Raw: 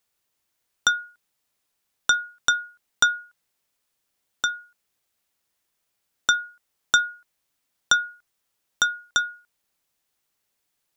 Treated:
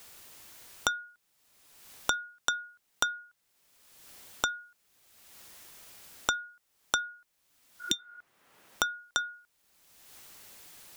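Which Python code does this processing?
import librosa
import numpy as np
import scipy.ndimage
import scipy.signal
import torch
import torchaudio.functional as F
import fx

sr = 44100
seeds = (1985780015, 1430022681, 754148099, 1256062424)

y = fx.spec_repair(x, sr, seeds[0], start_s=7.83, length_s=0.33, low_hz=360.0, high_hz=2300.0, source='after')
y = fx.band_squash(y, sr, depth_pct=100)
y = y * 10.0 ** (-5.5 / 20.0)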